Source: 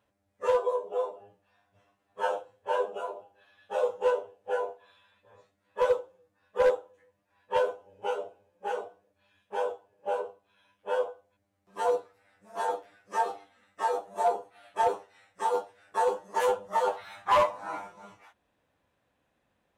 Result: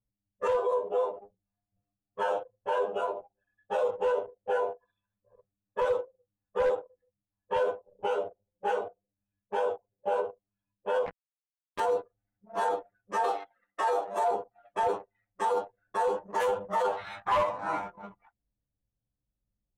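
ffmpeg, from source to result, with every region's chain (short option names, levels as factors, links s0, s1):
-filter_complex "[0:a]asettb=1/sr,asplit=3[s0][s1][s2];[s0]atrim=end=11.064[s3];[s1]atrim=start=11.06:end=11.8,asetpts=PTS-STARTPTS,afade=t=in:d=0.004:c=qsin,afade=t=out:st=0.736:d=0.004:c=qsin,highpass=430,acrusher=bits=5:mix=0:aa=0.5[s4];[s2]atrim=start=11.796[s5];[s3][s4]acrossfade=d=0.004:c1=hsin:c2=qsin[s6];[s6][s5]acrossfade=d=0.004:c1=qsin:c2=hsin,asettb=1/sr,asplit=3[s7][s8][s9];[s7]atrim=end=13.244[s10];[s8]atrim=start=13.24:end=14.31,asetpts=PTS-STARTPTS,afade=t=in:d=0.004:c=qsin,afade=t=out:st=1.066:d=0.004:c=qsin,highpass=410,acontrast=87[s11];[s9]atrim=start=14.306[s12];[s10][s11]acrossfade=d=0.004:c1=hsin:c2=qsin[s13];[s13][s12]acrossfade=d=0.004:c1=qsin:c2=hsin,anlmdn=0.01,bass=f=250:g=5,treble=f=4000:g=-4,alimiter=level_in=1.12:limit=0.0631:level=0:latency=1:release=37,volume=0.891,volume=1.78"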